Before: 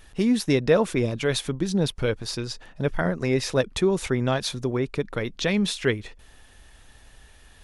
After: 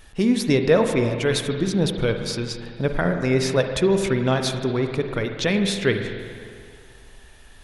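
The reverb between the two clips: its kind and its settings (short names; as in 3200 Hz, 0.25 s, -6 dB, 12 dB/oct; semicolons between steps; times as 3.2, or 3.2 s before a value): spring tank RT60 2.2 s, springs 46/51 ms, chirp 30 ms, DRR 5.5 dB; gain +2 dB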